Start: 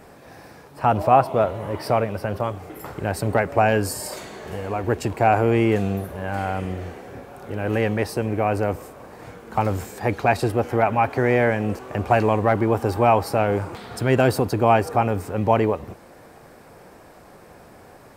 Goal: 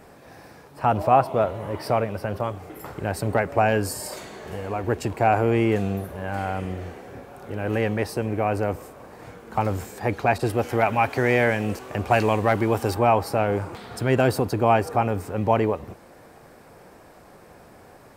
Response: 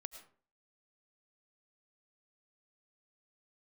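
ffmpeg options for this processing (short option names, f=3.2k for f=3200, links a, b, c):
-filter_complex "[0:a]asettb=1/sr,asplit=3[a][b][c];[a]atrim=end=10.384[d];[b]atrim=start=10.38:end=12.95,asetpts=PTS-STARTPTS,afade=t=in:d=0.004:c=qsin,afade=t=out:st=2.566:d=0.004:c=qsin,adynamicequalizer=threshold=0.0178:dfrequency=2000:dqfactor=0.7:tfrequency=2000:tqfactor=0.7:attack=5:release=100:ratio=0.375:range=4:mode=boostabove:tftype=highshelf[e];[c]atrim=start=12.946[f];[d][e]acrossfade=d=0.004:c1=hsin:c2=qsin[g];[g][f]acrossfade=d=0.004:c1=qsin:c2=hsin,volume=-2dB"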